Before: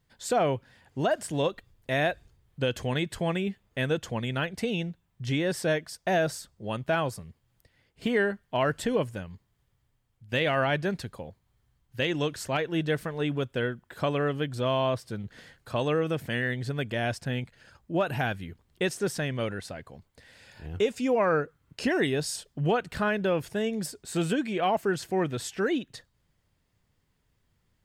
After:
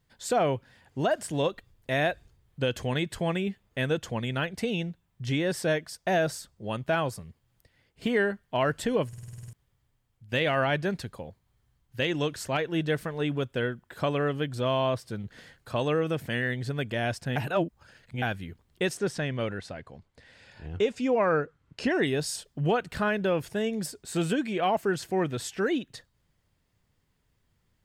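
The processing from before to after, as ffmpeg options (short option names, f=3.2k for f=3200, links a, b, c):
-filter_complex "[0:a]asettb=1/sr,asplit=3[a][b][c];[a]atrim=end=18.974[d];[b]atrim=start=18.97:end=22.07,asetpts=PTS-STARTPTS,afade=t=in:d=0.004:c=qsin,afade=t=out:st=3.096:d=0.004:c=qsin,adynamicsmooth=sensitivity=1:basefreq=7.7k[e];[c]atrim=start=22.066[f];[d][e]acrossfade=d=0.004:c1=hsin:c2=qsin[g];[g][f]acrossfade=d=0.004:c1=qsin:c2=hsin,asplit=12[h][i][j][k][l][m][n][o][p][q][r][s];[h]atrim=end=9.132[t];[i]atrim=start=9.078:end=9.132[u];[j]atrim=start=9.078:end=9.132[v];[k]atrim=start=9.078:end=9.132[w];[l]atrim=start=9.078:end=9.132[x];[m]atrim=start=9.078:end=9.132[y];[n]atrim=start=9.078:end=9.132[z];[o]atrim=start=9.078:end=9.132[aa];[p]atrim=start=9.078:end=9.132[ab];[q]atrim=start=9.528:end=17.362[ac];[r]atrim=start=17.358:end=18.222,asetpts=PTS-STARTPTS,areverse[ad];[s]atrim=start=18.218[ae];[t][u]acrossfade=d=0.004:c1=hsin:c2=hsin[af];[af][v]acrossfade=d=0.004:c1=hsin:c2=hsin[ag];[ag][w]acrossfade=d=0.004:c1=hsin:c2=hsin[ah];[ah][x]acrossfade=d=0.004:c1=hsin:c2=hsin[ai];[ai][y]acrossfade=d=0.004:c1=hsin:c2=hsin[aj];[aj][z]acrossfade=d=0.004:c1=hsin:c2=hsin[ak];[ak][aa]acrossfade=d=0.004:c1=hsin:c2=hsin[al];[al][ab]acrossfade=d=0.004:c1=hsin:c2=hsin[am];[am][ac]acrossfade=d=0.004:c1=hsin:c2=hsin[an];[an][ad]acrossfade=d=0.004:c1=hsin:c2=hsin[ao];[ao][ae]acrossfade=d=0.004:c1=hsin:c2=hsin"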